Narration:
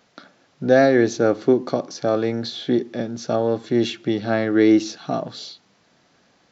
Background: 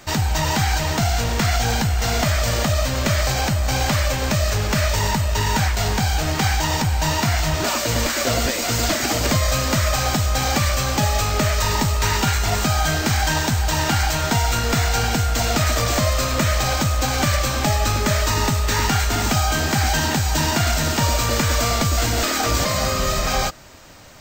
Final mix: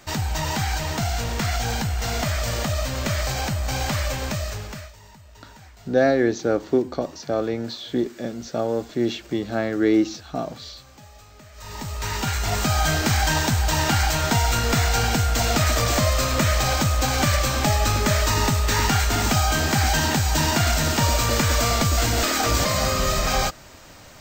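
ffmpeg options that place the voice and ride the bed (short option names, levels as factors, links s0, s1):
-filter_complex "[0:a]adelay=5250,volume=0.668[s0];[1:a]volume=11.9,afade=t=out:st=4.17:d=0.76:silence=0.0749894,afade=t=in:st=11.53:d=1.32:silence=0.0473151[s1];[s0][s1]amix=inputs=2:normalize=0"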